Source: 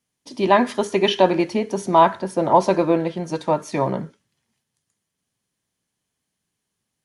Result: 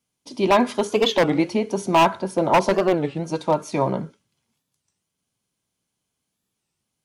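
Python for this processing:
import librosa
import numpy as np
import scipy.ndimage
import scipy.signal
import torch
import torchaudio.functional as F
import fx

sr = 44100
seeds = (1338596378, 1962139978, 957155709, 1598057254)

y = fx.notch(x, sr, hz=1800.0, q=6.1)
y = 10.0 ** (-9.0 / 20.0) * (np.abs((y / 10.0 ** (-9.0 / 20.0) + 3.0) % 4.0 - 2.0) - 1.0)
y = fx.record_warp(y, sr, rpm=33.33, depth_cents=250.0)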